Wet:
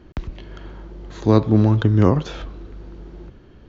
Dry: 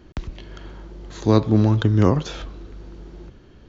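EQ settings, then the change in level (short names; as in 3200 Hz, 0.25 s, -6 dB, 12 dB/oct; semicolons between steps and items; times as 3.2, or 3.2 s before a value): high shelf 4900 Hz -10.5 dB; +1.5 dB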